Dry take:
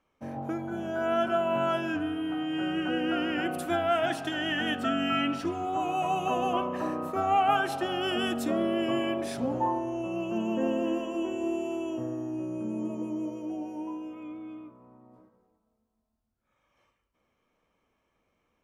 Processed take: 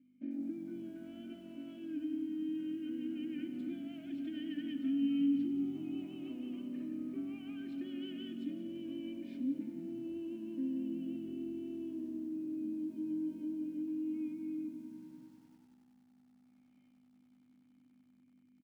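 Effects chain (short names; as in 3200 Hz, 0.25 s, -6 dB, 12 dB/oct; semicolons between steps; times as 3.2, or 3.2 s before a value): low shelf 390 Hz +4 dB; notches 60/120/180/240/300/360/420/480/540/600 Hz; comb 3.3 ms, depth 58%; compressor 16:1, threshold -32 dBFS, peak gain reduction 14 dB; hum 50 Hz, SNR 16 dB; soft clip -28 dBFS, distortion -22 dB; vowel filter i; speaker cabinet 200–7600 Hz, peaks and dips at 280 Hz +5 dB, 840 Hz +5 dB, 1300 Hz -4 dB, 2000 Hz -7 dB, 3400 Hz -7 dB, 6100 Hz -10 dB; frequency-shifting echo 0.172 s, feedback 44%, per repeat -45 Hz, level -13.5 dB; lo-fi delay 96 ms, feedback 80%, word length 11-bit, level -14.5 dB; gain +3 dB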